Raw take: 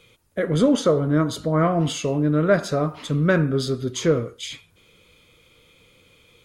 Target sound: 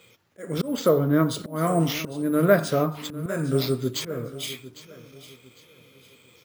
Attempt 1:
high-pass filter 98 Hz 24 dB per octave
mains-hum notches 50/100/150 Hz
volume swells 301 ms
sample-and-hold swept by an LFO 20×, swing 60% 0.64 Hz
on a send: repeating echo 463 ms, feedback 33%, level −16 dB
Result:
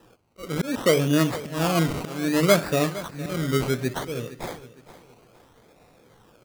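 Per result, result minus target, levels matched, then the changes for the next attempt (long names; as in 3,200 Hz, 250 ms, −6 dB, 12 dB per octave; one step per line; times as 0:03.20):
echo 341 ms early; sample-and-hold swept by an LFO: distortion +11 dB
change: repeating echo 804 ms, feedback 33%, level −16 dB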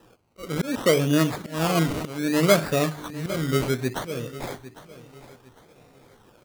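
sample-and-hold swept by an LFO: distortion +11 dB
change: sample-and-hold swept by an LFO 4×, swing 60% 0.64 Hz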